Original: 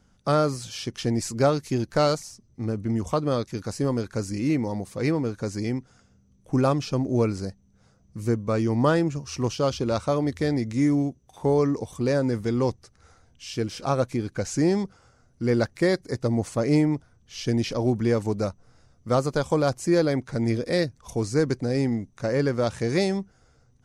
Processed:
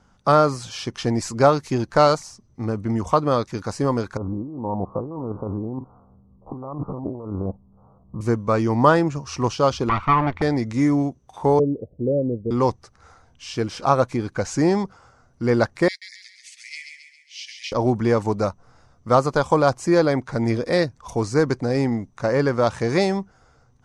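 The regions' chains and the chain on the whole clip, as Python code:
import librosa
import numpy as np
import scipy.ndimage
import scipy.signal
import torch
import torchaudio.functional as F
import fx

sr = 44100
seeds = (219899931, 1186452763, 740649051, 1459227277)

y = fx.chain(x, sr, fx.spec_steps(hold_ms=50),
    fx.steep_lowpass(hz=1200.0, slope=72),
    fx.over_compress(threshold_db=-32.0, ratio=-1.0), at=(4.17, 8.21))
y = fx.chain(y, sr, fx.lower_of_two(delay_ms=0.89),
    fx.lowpass_res(hz=2500.0, q=2.0), at=(9.89, 10.42))
y = fx.chain(y, sr, fx.steep_lowpass(hz=600.0, slope=72),
    fx.upward_expand(threshold_db=-32.0, expansion=1.5), at=(11.59, 12.51))
y = fx.chain(y, sr, fx.steep_highpass(hz=2000.0, slope=72),
    fx.high_shelf(hz=6600.0, db=-8.0),
    fx.echo_feedback(ms=135, feedback_pct=49, wet_db=-6.0), at=(15.88, 17.72))
y = scipy.signal.sosfilt(scipy.signal.butter(2, 8700.0, 'lowpass', fs=sr, output='sos'), y)
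y = fx.peak_eq(y, sr, hz=1000.0, db=9.0, octaves=1.2)
y = y * 10.0 ** (2.0 / 20.0)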